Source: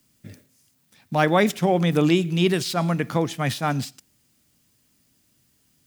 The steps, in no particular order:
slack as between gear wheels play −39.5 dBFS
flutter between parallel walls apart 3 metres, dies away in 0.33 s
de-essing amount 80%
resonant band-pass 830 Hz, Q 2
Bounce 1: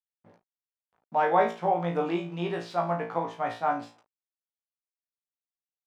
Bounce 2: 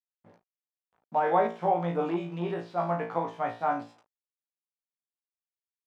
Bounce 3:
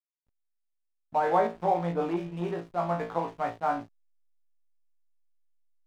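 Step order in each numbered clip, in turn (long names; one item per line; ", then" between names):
flutter between parallel walls, then slack as between gear wheels, then resonant band-pass, then de-essing
flutter between parallel walls, then slack as between gear wheels, then de-essing, then resonant band-pass
flutter between parallel walls, then de-essing, then resonant band-pass, then slack as between gear wheels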